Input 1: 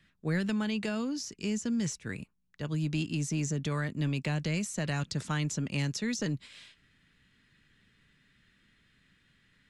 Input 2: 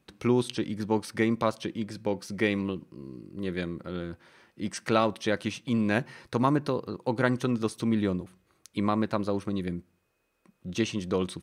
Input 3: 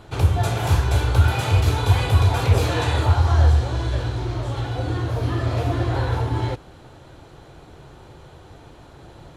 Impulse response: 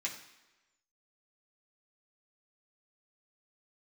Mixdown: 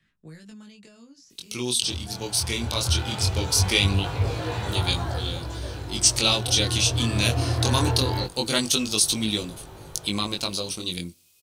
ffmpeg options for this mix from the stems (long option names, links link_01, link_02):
-filter_complex "[0:a]acrossover=split=370|4500[link_01][link_02][link_03];[link_01]acompressor=threshold=-44dB:ratio=4[link_04];[link_02]acompressor=threshold=-52dB:ratio=4[link_05];[link_03]acompressor=threshold=-47dB:ratio=4[link_06];[link_04][link_05][link_06]amix=inputs=3:normalize=0,volume=0dB[link_07];[1:a]aexciter=amount=11.4:drive=7.6:freq=2700,adelay=1300,volume=1.5dB[link_08];[2:a]lowpass=6600,dynaudnorm=framelen=140:gausssize=11:maxgain=15dB,adelay=1700,volume=-9dB[link_09];[link_07][link_08][link_09]amix=inputs=3:normalize=0,dynaudnorm=framelen=230:gausssize=9:maxgain=11.5dB,flanger=delay=18.5:depth=6.9:speed=0.21"